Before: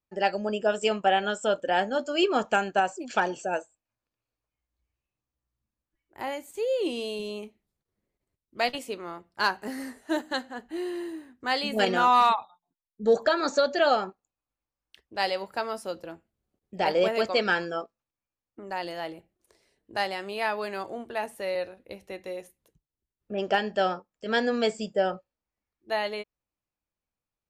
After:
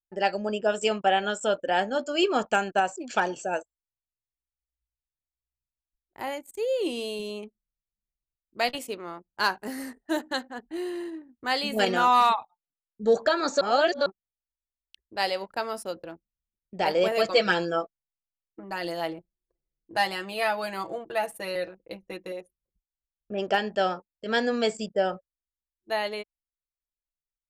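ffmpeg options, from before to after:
-filter_complex "[0:a]asettb=1/sr,asplit=3[a][b][c];[a]atrim=end=17.114[d];[b]atrim=start=17.11:end=22.32,asetpts=PTS-STARTPTS,afade=t=in:d=0.004:c=qsin,afade=t=out:st=5.206:d=0.004:c=qsin,aecho=1:1:6.1:0.8,atrim=end_sample=229761[e];[c]atrim=start=22.316[f];[d][e]acrossfade=d=0.004:c1=hsin:c2=qsin[g];[g][f]acrossfade=d=0.004:c1=qsin:c2=hsin,asplit=3[h][i][j];[h]atrim=end=13.612[k];[i]atrim=start=13.608:end=14.062,asetpts=PTS-STARTPTS,areverse[l];[j]atrim=start=14.058[m];[k][l]acrossfade=d=0.004:c1=hsin:c2=hsin[n];[n][m]acrossfade=d=0.004:c1=hsin:c2=hsin,anlmdn=0.0158,highshelf=f=9.5k:g=9"

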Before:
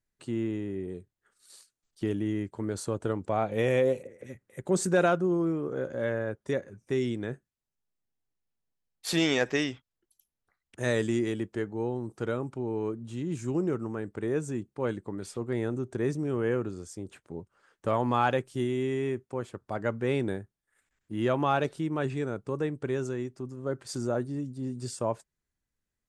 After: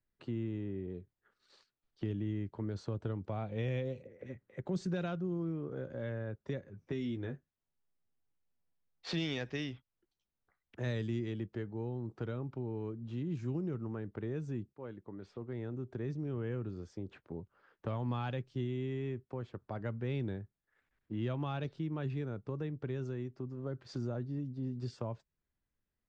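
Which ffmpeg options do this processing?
-filter_complex "[0:a]asettb=1/sr,asplit=3[a][b][c];[a]atrim=end=6.784[d];[b]atrim=start=6.78:end=9.12,asetpts=PTS-STARTPTS,afade=t=in:d=0.004:c=qsin,afade=t=out:st=2.336:d=0.004:c=qsin,asplit=2[e][f];[f]adelay=12,volume=-4.5dB[g];[e][g]amix=inputs=2:normalize=0,atrim=end_sample=103194[h];[c]atrim=start=9.116[i];[d][h]acrossfade=d=0.004:c1=hsin:c2=qsin[j];[j][i]acrossfade=d=0.004:c1=qsin:c2=hsin,asplit=2[k][l];[k]atrim=end=14.73,asetpts=PTS-STARTPTS,afade=t=out:st=14.726:d=0.004:c=hsin:silence=0.188365[m];[l]atrim=start=14.73,asetpts=PTS-STARTPTS,afade=t=in:d=1.97:silence=0.188365[n];[m][n]concat=n=2:v=0:a=1,lowpass=f=5.4k:w=0.5412,lowpass=f=5.4k:w=1.3066,aemphasis=mode=reproduction:type=75fm,acrossover=split=180|3000[o][p][q];[p]acompressor=threshold=-40dB:ratio=4[r];[o][r][q]amix=inputs=3:normalize=0,volume=-1.5dB"

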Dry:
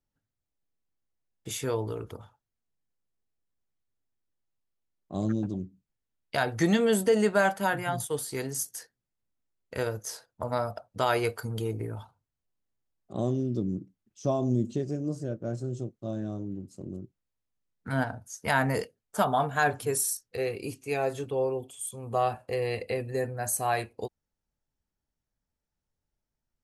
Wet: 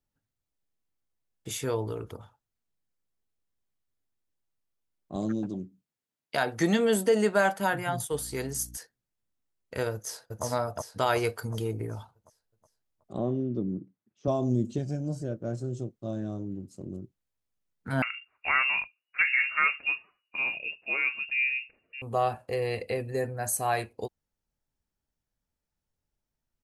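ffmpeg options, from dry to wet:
-filter_complex "[0:a]asettb=1/sr,asplit=3[a][b][c];[a]atrim=end=5.164[d];[b]atrim=start=5.16:end=7.6,asetpts=PTS-STARTPTS,afade=t=in:d=0.004:c=qsin,afade=t=out:st=2.436:d=0.004:c=qsin,highpass=160[e];[c]atrim=start=7.596[f];[d][e]acrossfade=d=0.004:c1=hsin:c2=qsin[g];[g][f]acrossfade=d=0.004:c1=qsin:c2=hsin,asettb=1/sr,asplit=3[h][i][j];[h]atrim=end=8.124[k];[i]atrim=start=8.12:end=8.77,asetpts=PTS-STARTPTS,afade=t=in:d=0.004:c=qsin,afade=t=out:st=0.646:d=0.004:c=qsin,aeval=exprs='val(0)+0.00501*(sin(2*PI*60*n/s)+sin(2*PI*2*60*n/s)/2+sin(2*PI*3*60*n/s)/3+sin(2*PI*4*60*n/s)/4+sin(2*PI*5*60*n/s)/5)':c=same[l];[j]atrim=start=8.766[m];[k][l]acrossfade=d=0.004:c1=hsin:c2=qsin[n];[n][m]acrossfade=d=0.004:c1=qsin:c2=hsin,asplit=2[o][p];[p]afade=t=in:st=9.93:d=0.01,afade=t=out:st=10.44:d=0.01,aecho=0:1:370|740|1110|1480|1850|2220|2590:0.841395|0.420698|0.210349|0.105174|0.0525872|0.0262936|0.0131468[q];[o][q]amix=inputs=2:normalize=0,asettb=1/sr,asplit=3[r][s][t];[r]atrim=end=13.184[u];[s]atrim=start=13.18:end=14.28,asetpts=PTS-STARTPTS,afade=t=in:d=0.004:c=qsin,afade=t=out:st=1.096:d=0.004:c=qsin,highpass=130,lowpass=2.2k[v];[t]atrim=start=14.276[w];[u][v]acrossfade=d=0.004:c1=hsin:c2=qsin[x];[x][w]acrossfade=d=0.004:c1=qsin:c2=hsin,asettb=1/sr,asplit=3[y][z][aa];[y]atrim=end=14.784[ab];[z]atrim=start=14.78:end=15.22,asetpts=PTS-STARTPTS,afade=t=in:d=0.004:c=qsin,afade=t=out:st=0.436:d=0.004:c=qsin,aecho=1:1:1.3:0.65,atrim=end_sample=19404[ac];[aa]atrim=start=15.216[ad];[ab][ac]acrossfade=d=0.004:c1=hsin:c2=qsin[ae];[ae][ad]acrossfade=d=0.004:c1=qsin:c2=hsin,asettb=1/sr,asplit=3[af][ag][ah];[af]atrim=end=18.024[ai];[ag]atrim=start=18.02:end=22.02,asetpts=PTS-STARTPTS,afade=t=in:d=0.004:c=qsin,afade=t=out:st=3.996:d=0.004:c=qsin,lowpass=f=2.5k:t=q:w=0.5098,lowpass=f=2.5k:t=q:w=0.6013,lowpass=f=2.5k:t=q:w=0.9,lowpass=f=2.5k:t=q:w=2.563,afreqshift=-2900[aj];[ah]atrim=start=22.016[ak];[ai][aj]acrossfade=d=0.004:c1=hsin:c2=qsin[al];[al][ak]acrossfade=d=0.004:c1=qsin:c2=hsin"

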